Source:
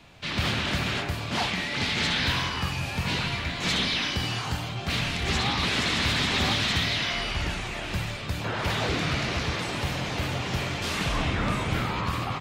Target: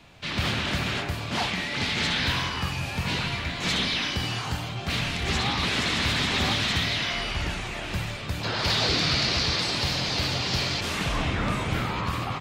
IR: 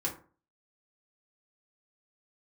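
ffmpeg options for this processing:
-filter_complex "[0:a]asettb=1/sr,asplit=3[a][b][c];[a]atrim=end=8.434[d];[b]atrim=start=8.43:end=10.81,asetpts=PTS-STARTPTS,afade=t=in:d=0.004:c=qsin,afade=t=out:st=2.376:d=0.004:c=qsin,equalizer=f=4.6k:t=o:w=0.75:g=14[e];[c]atrim=start=10.806[f];[d][e]acrossfade=d=0.004:c1=hsin:c2=qsin[g];[g][f]acrossfade=d=0.004:c1=qsin:c2=hsin"

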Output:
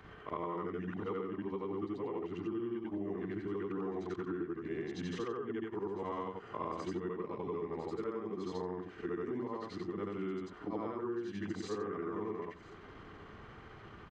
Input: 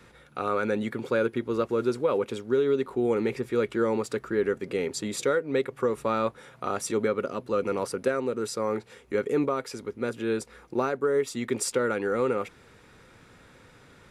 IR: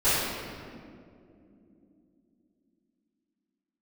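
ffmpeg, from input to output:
-filter_complex "[0:a]afftfilt=real='re':imag='-im':win_size=8192:overlap=0.75,lowpass=3.5k,acompressor=threshold=-42dB:ratio=10,asetrate=37084,aresample=44100,atempo=1.18921,asplit=2[a][b];[b]aecho=0:1:1002:0.0841[c];[a][c]amix=inputs=2:normalize=0,volume=6.5dB"

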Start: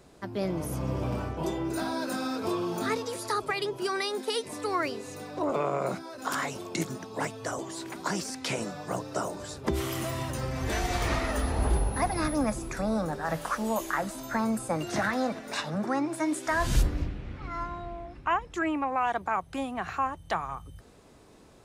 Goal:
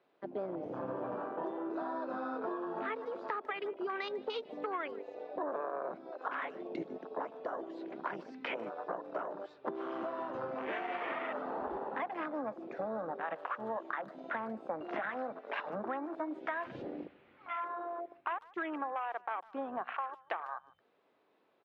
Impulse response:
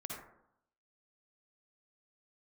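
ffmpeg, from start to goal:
-filter_complex "[0:a]highpass=400,afwtdn=0.0178,lowpass=f=3.4k:w=0.5412,lowpass=f=3.4k:w=1.3066,acompressor=threshold=-38dB:ratio=6,asplit=2[a][b];[b]adelay=150,highpass=300,lowpass=3.4k,asoftclip=type=hard:threshold=-33.5dB,volume=-21dB[c];[a][c]amix=inputs=2:normalize=0,volume=3dB"

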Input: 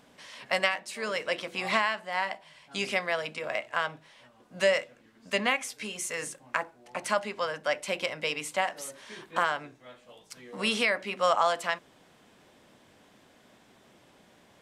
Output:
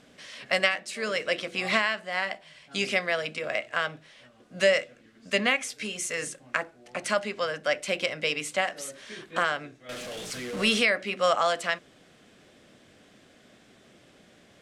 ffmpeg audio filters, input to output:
-filter_complex "[0:a]asettb=1/sr,asplit=3[a][b][c];[a]atrim=end=9.894[d];[b]atrim=start=9.89:end=10.8,asetpts=PTS-STARTPTS,afade=t=in:d=0.004:c=qsin,afade=t=out:st=0.906:d=0.004:c=qsin,aeval=exprs='val(0)+0.5*0.0168*sgn(val(0))':c=same[e];[c]atrim=start=10.796[f];[d][e]acrossfade=d=0.004:c1=hsin:c2=qsin[g];[g][f]acrossfade=d=0.004:c1=qsin:c2=hsin,lowpass=10k,equalizer=f=930:t=o:w=0.44:g=-11,volume=3.5dB"

